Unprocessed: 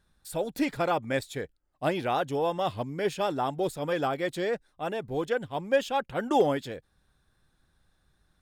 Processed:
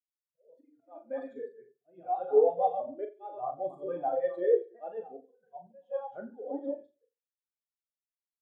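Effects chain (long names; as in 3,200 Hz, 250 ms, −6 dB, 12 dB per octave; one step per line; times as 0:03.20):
delay that plays each chunk backwards 150 ms, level −5.5 dB
high-pass filter 220 Hz 6 dB per octave
mains-hum notches 50/100/150/200/250/300/350/400 Hz
volume swells 484 ms
in parallel at −3 dB: downward compressor, threshold −37 dBFS, peak gain reduction 13 dB
on the sum: flanger 0.26 Hz, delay 0.6 ms, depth 5.4 ms, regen −27%
hard clipping −24.5 dBFS, distortion −19 dB
on a send: reverse bouncing-ball delay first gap 40 ms, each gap 1.15×, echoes 5
on the sum: every bin expanded away from the loudest bin 2.5 to 1
level +5.5 dB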